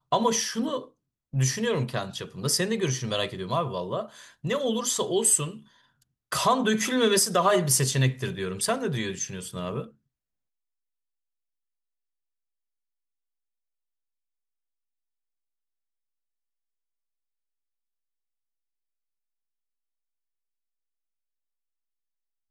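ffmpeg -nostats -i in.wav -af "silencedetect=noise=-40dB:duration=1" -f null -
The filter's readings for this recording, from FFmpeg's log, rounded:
silence_start: 9.87
silence_end: 22.50 | silence_duration: 12.63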